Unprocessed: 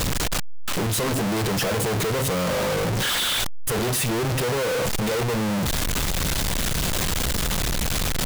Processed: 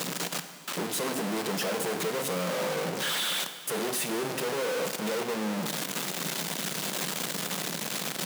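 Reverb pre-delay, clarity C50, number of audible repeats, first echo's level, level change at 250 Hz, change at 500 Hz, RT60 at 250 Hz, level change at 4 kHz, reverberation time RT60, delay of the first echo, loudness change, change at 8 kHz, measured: 6 ms, 10.0 dB, no echo, no echo, -7.0 dB, -5.5 dB, 1.9 s, -6.0 dB, 1.9 s, no echo, -6.5 dB, -6.0 dB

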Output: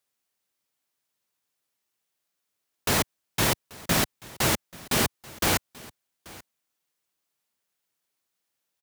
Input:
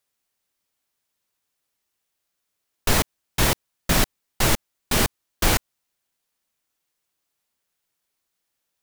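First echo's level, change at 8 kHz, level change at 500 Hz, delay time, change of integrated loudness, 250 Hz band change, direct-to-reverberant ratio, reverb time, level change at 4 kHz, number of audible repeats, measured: -21.5 dB, -2.5 dB, -2.5 dB, 835 ms, -3.0 dB, -2.5 dB, no reverb, no reverb, -2.5 dB, 1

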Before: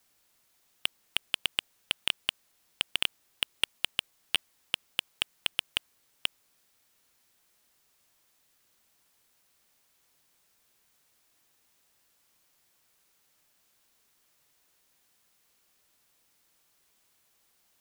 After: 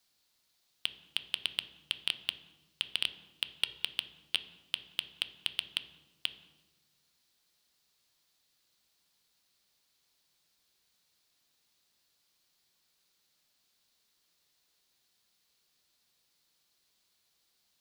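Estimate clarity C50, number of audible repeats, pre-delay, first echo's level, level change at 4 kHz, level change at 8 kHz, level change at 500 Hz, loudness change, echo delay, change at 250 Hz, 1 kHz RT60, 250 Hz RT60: 13.5 dB, no echo, 3 ms, no echo, -2.5 dB, -7.0 dB, -7.5 dB, -3.5 dB, no echo, -6.5 dB, 1.1 s, 1.5 s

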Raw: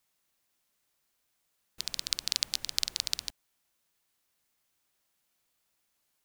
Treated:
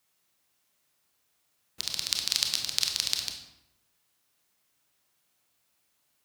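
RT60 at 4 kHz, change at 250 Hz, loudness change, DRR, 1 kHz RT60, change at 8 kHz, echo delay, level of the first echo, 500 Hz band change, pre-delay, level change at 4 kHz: 0.60 s, +4.5 dB, +4.0 dB, 3.0 dB, 0.85 s, +4.0 dB, no echo, no echo, +4.5 dB, 24 ms, +4.0 dB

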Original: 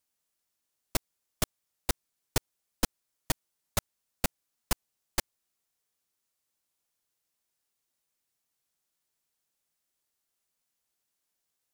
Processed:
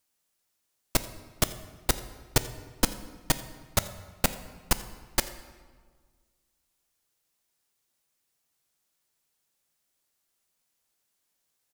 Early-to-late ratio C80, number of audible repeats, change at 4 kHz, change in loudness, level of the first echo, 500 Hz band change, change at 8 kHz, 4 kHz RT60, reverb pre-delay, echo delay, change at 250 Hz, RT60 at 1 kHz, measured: 14.0 dB, 1, +5.0 dB, +4.5 dB, -21.0 dB, +5.0 dB, +4.5 dB, 1.1 s, 3 ms, 86 ms, +5.0 dB, 1.5 s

